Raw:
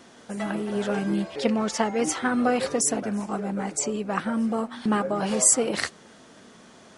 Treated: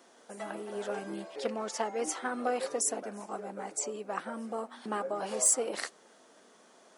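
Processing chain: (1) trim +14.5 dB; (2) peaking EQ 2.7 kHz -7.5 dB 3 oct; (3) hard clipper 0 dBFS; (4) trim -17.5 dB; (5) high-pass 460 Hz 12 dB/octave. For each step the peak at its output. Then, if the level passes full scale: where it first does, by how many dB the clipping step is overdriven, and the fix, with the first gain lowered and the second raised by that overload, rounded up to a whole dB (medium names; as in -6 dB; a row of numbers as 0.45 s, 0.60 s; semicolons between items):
+8.0 dBFS, +5.0 dBFS, 0.0 dBFS, -17.5 dBFS, -16.5 dBFS; step 1, 5.0 dB; step 1 +9.5 dB, step 4 -12.5 dB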